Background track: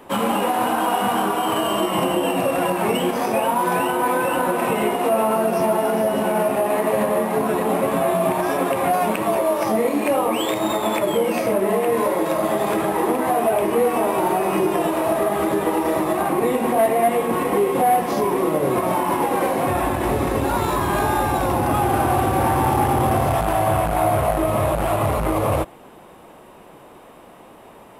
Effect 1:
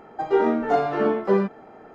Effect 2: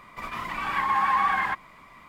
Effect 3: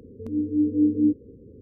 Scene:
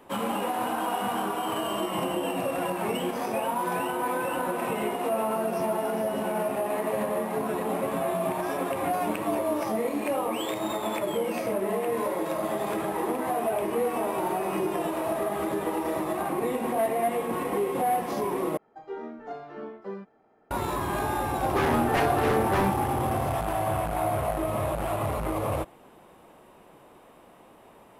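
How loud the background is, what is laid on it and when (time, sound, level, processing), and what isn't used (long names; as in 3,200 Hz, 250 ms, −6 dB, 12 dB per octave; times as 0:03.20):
background track −8.5 dB
0:08.49: mix in 3 −14 dB
0:18.57: overwrite with 1 −17.5 dB + downsampling to 32,000 Hz
0:21.24: mix in 1 −1 dB + wave folding −19 dBFS
not used: 2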